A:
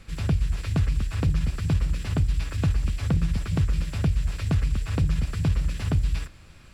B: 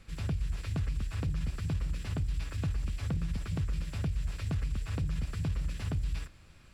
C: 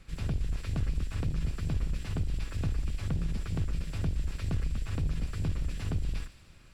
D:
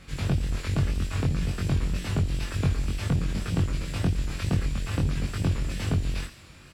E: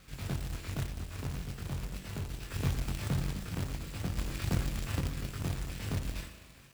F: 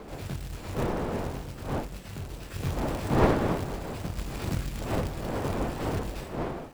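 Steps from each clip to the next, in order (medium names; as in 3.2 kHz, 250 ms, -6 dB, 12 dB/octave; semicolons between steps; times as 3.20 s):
peak limiter -18 dBFS, peak gain reduction 3.5 dB; trim -7 dB
octave divider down 2 oct, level -2 dB; feedback echo behind a high-pass 74 ms, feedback 74%, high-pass 2.8 kHz, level -12 dB
high-pass 100 Hz 6 dB/octave; wow and flutter 77 cents; doubling 22 ms -2.5 dB; trim +7.5 dB
spring tank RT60 1.7 s, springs 37 ms, chirp 75 ms, DRR 7.5 dB; random-step tremolo 1.2 Hz; companded quantiser 4-bit; trim -6.5 dB
wind noise 580 Hz -32 dBFS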